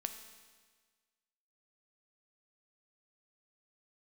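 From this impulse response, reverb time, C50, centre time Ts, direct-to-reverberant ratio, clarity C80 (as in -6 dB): 1.5 s, 8.5 dB, 21 ms, 6.5 dB, 10.0 dB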